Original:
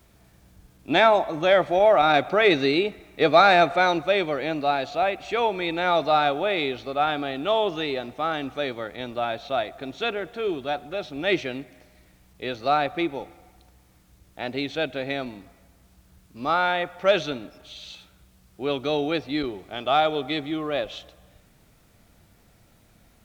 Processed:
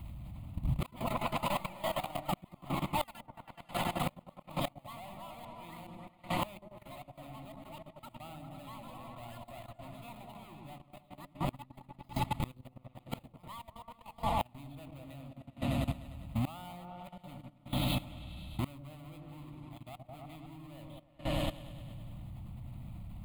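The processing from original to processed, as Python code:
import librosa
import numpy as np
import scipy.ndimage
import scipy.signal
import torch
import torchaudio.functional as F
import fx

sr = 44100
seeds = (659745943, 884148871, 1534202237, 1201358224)

y = fx.halfwave_hold(x, sr)
y = fx.echo_pitch(y, sr, ms=216, semitones=7, count=3, db_per_echo=-3.0)
y = fx.peak_eq(y, sr, hz=120.0, db=5.5, octaves=0.91)
y = fx.gate_flip(y, sr, shuts_db=-9.0, range_db=-25)
y = fx.low_shelf(y, sr, hz=420.0, db=7.5)
y = fx.echo_opening(y, sr, ms=101, hz=400, octaves=1, feedback_pct=70, wet_db=0)
y = fx.gate_flip(y, sr, shuts_db=-12.0, range_db=-29)
y = fx.level_steps(y, sr, step_db=16)
y = fx.fixed_phaser(y, sr, hz=1600.0, stages=6)
y = F.gain(torch.from_numpy(y), 4.5).numpy()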